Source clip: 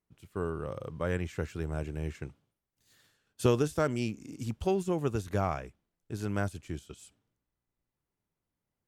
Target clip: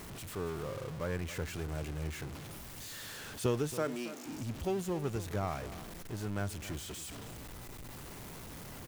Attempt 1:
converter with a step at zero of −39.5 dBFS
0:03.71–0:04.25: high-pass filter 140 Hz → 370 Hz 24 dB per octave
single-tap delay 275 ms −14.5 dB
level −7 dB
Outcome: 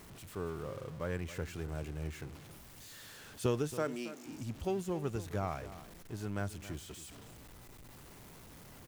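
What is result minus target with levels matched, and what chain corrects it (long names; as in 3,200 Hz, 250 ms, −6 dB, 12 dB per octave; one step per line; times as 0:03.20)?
converter with a step at zero: distortion −6 dB
converter with a step at zero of −32.5 dBFS
0:03.71–0:04.25: high-pass filter 140 Hz → 370 Hz 24 dB per octave
single-tap delay 275 ms −14.5 dB
level −7 dB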